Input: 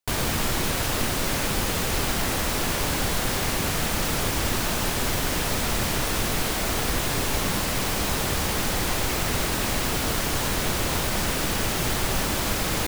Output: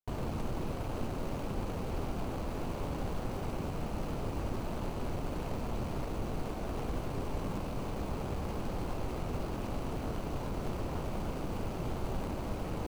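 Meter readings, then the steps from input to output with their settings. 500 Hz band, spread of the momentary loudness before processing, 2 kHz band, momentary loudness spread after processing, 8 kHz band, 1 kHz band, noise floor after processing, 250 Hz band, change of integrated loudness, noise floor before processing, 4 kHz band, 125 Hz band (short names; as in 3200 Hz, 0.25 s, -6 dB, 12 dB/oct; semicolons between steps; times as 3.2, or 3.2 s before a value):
-9.0 dB, 0 LU, -21.5 dB, 1 LU, -27.5 dB, -12.0 dB, -38 dBFS, -8.0 dB, -13.5 dB, -26 dBFS, -24.0 dB, -8.0 dB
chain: median filter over 25 samples; gain -8 dB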